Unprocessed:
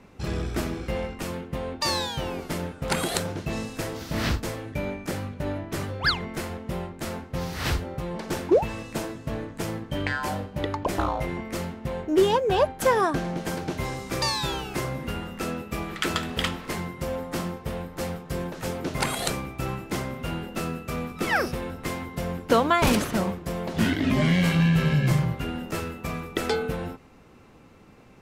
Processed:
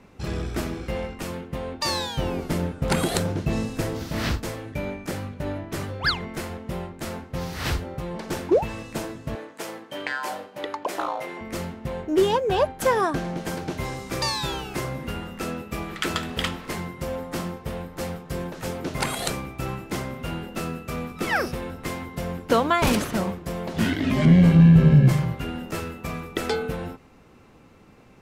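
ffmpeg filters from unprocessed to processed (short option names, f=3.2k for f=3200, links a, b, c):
-filter_complex "[0:a]asettb=1/sr,asplit=3[a][b][c];[a]atrim=end=2.184[d];[b]atrim=start=2.18:end=4.09,asetpts=PTS-STARTPTS,afade=t=in:d=0.004:c=qsin,afade=t=out:st=1.906:d=0.004:c=qsin,lowshelf=f=470:g=7[e];[c]atrim=start=4.086[f];[d][e]acrossfade=d=0.004:c1=hsin:c2=qsin[g];[g][f]acrossfade=d=0.004:c1=qsin:c2=hsin,asettb=1/sr,asplit=3[h][i][j];[h]atrim=end=9.354[k];[i]atrim=start=9.35:end=11.41,asetpts=PTS-STARTPTS,afade=t=in:d=0.004:c=qsin,afade=t=out:st=2.056:d=0.004:c=qsin,highpass=410[l];[j]atrim=start=11.406[m];[k][l]acrossfade=d=0.004:c1=hsin:c2=qsin[n];[n][m]acrossfade=d=0.004:c1=qsin:c2=hsin,asettb=1/sr,asplit=3[o][p][q];[o]atrim=end=24.254[r];[p]atrim=start=24.25:end=25.09,asetpts=PTS-STARTPTS,afade=t=in:d=0.004:c=qsin,afade=t=out:st=0.836:d=0.004:c=qsin,tiltshelf=f=880:g=8.5[s];[q]atrim=start=25.086[t];[r][s]acrossfade=d=0.004:c1=hsin:c2=qsin[u];[u][t]acrossfade=d=0.004:c1=qsin:c2=hsin"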